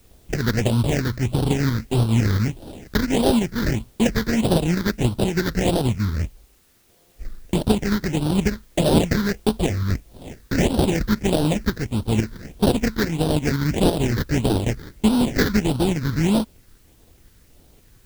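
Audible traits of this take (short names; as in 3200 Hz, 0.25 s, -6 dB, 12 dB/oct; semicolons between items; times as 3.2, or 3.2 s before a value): aliases and images of a low sample rate 1200 Hz, jitter 20%; tremolo saw up 5.9 Hz, depth 45%; phasing stages 6, 1.6 Hz, lowest notch 700–2000 Hz; a quantiser's noise floor 10-bit, dither triangular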